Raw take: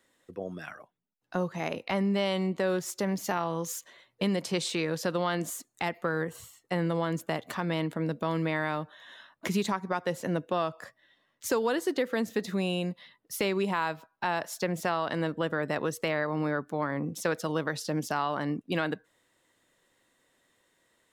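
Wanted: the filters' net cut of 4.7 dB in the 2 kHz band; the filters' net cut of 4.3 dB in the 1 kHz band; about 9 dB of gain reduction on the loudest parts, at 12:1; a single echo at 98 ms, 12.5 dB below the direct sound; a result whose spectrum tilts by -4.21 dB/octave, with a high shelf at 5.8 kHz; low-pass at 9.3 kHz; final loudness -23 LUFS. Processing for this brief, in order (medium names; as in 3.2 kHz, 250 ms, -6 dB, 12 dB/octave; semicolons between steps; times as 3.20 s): low-pass 9.3 kHz; peaking EQ 1 kHz -4.5 dB; peaking EQ 2 kHz -5.5 dB; treble shelf 5.8 kHz +9 dB; compression 12:1, threshold -33 dBFS; delay 98 ms -12.5 dB; trim +15.5 dB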